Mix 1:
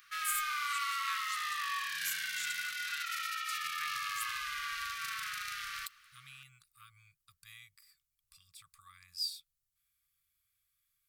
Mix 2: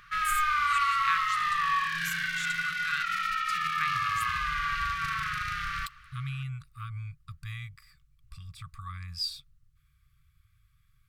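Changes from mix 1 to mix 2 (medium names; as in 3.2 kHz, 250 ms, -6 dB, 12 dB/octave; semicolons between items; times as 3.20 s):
background -4.5 dB; master: remove pre-emphasis filter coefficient 0.97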